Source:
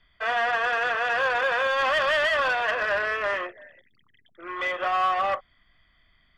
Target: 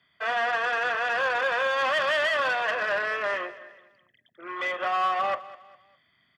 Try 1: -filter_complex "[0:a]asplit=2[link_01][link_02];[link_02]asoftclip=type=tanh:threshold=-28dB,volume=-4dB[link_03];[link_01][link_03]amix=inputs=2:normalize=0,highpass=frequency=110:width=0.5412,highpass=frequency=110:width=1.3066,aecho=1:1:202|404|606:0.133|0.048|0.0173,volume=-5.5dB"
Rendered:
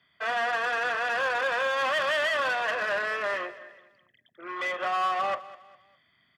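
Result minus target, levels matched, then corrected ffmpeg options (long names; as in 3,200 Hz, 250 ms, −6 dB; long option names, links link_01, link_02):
soft clipping: distortion +13 dB
-filter_complex "[0:a]asplit=2[link_01][link_02];[link_02]asoftclip=type=tanh:threshold=-17dB,volume=-4dB[link_03];[link_01][link_03]amix=inputs=2:normalize=0,highpass=frequency=110:width=0.5412,highpass=frequency=110:width=1.3066,aecho=1:1:202|404|606:0.133|0.048|0.0173,volume=-5.5dB"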